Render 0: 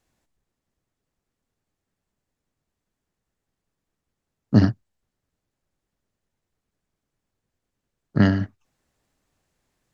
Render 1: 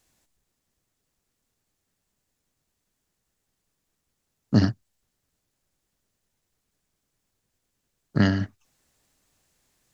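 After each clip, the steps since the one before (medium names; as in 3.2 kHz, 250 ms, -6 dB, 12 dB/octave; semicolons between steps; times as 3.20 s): treble shelf 3.1 kHz +10 dB; in parallel at 0 dB: compression, threshold -24 dBFS, peak gain reduction 14.5 dB; on the sum: trim -5.5 dB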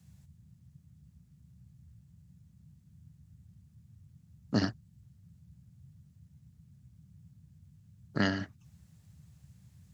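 bass shelf 230 Hz -12 dB; band noise 64–170 Hz -54 dBFS; trim -3 dB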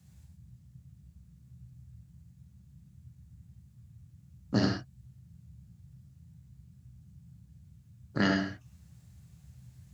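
gated-style reverb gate 140 ms flat, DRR 0.5 dB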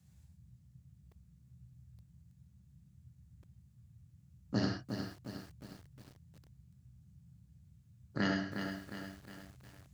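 bit-crushed delay 359 ms, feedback 55%, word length 8-bit, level -6.5 dB; trim -6 dB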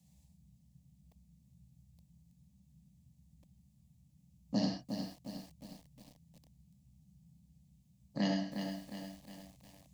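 static phaser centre 380 Hz, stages 6; trim +2.5 dB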